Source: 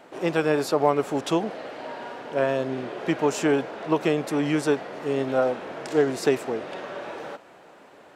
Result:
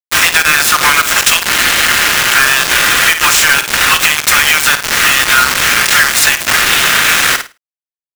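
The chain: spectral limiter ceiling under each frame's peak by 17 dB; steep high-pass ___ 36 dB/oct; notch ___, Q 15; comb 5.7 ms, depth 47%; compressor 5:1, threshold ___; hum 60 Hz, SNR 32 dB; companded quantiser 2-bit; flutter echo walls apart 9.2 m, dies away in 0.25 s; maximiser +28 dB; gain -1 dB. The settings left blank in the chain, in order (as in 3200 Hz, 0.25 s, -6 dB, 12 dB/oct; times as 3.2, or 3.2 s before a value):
1300 Hz, 4600 Hz, -36 dBFS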